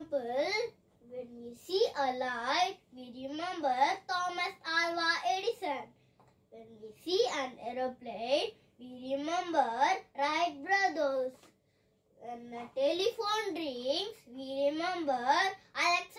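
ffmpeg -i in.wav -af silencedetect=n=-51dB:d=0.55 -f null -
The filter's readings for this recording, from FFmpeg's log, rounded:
silence_start: 11.46
silence_end: 12.21 | silence_duration: 0.74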